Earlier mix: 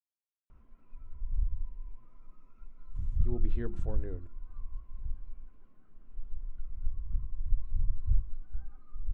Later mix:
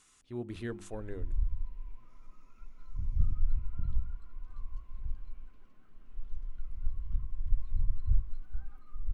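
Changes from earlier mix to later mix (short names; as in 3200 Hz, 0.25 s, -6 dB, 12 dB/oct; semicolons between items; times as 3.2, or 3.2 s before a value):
speech: entry -2.95 s; master: remove LPF 1000 Hz 6 dB/oct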